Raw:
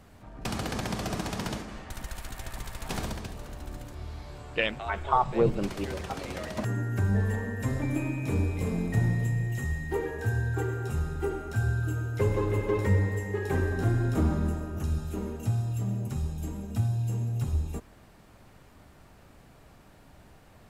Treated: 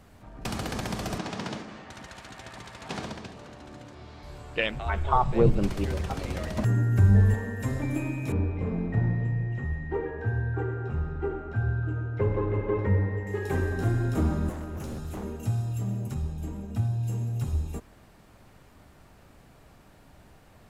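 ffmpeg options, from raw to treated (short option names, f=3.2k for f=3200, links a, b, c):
-filter_complex "[0:a]asettb=1/sr,asplit=3[a][b][c];[a]atrim=end=1.184[d];[b]atrim=start=1.18:end=4.23,asetpts=PTS-STARTPTS,afade=t=in:d=0.004:c=qsin,afade=t=out:st=3.046:d=0.004:c=qsin,highpass=130,lowpass=5.8k[e];[c]atrim=start=4.226[f];[d][e]acrossfade=d=0.004:c1=hsin:c2=qsin[g];[g][f]acrossfade=d=0.004:c1=qsin:c2=hsin,asettb=1/sr,asplit=3[h][i][j];[h]atrim=end=4.744[k];[i]atrim=start=4.74:end=7.34,asetpts=PTS-STARTPTS,afade=t=in:d=0.004:c=qsin,afade=t=out:st=2.596:d=0.004:c=qsin,lowshelf=f=160:g=11[l];[j]atrim=start=7.336[m];[k][l]acrossfade=d=0.004:c1=hsin:c2=qsin[n];[n][m]acrossfade=d=0.004:c1=qsin:c2=hsin,asettb=1/sr,asplit=3[o][p][q];[o]atrim=end=8.324[r];[p]atrim=start=8.32:end=13.27,asetpts=PTS-STARTPTS,afade=t=in:d=0.004:c=qsin,afade=t=out:st=4.946:d=0.004:c=qsin,lowpass=1.9k[s];[q]atrim=start=13.266[t];[r][s]acrossfade=d=0.004:c1=hsin:c2=qsin[u];[u][t]acrossfade=d=0.004:c1=qsin:c2=hsin,asettb=1/sr,asplit=3[v][w][x];[v]atrim=end=14.494[y];[w]atrim=start=14.49:end=15.24,asetpts=PTS-STARTPTS,afade=t=in:d=0.004:c=qsin,afade=t=out:st=0.746:d=0.004:c=qsin,aeval=exprs='0.0316*(abs(mod(val(0)/0.0316+3,4)-2)-1)':c=same[z];[x]atrim=start=15.236[aa];[y][z]acrossfade=d=0.004:c1=hsin:c2=qsin[ab];[ab][aa]acrossfade=d=0.004:c1=qsin:c2=hsin,asettb=1/sr,asplit=3[ac][ad][ae];[ac]atrim=end=16.144[af];[ad]atrim=start=16.14:end=17.03,asetpts=PTS-STARTPTS,afade=t=in:d=0.004:c=qsin,afade=t=out:st=0.886:d=0.004:c=qsin,highshelf=f=4k:g=-7.5[ag];[ae]atrim=start=17.026[ah];[af][ag]acrossfade=d=0.004:c1=hsin:c2=qsin[ai];[ai][ah]acrossfade=d=0.004:c1=qsin:c2=hsin"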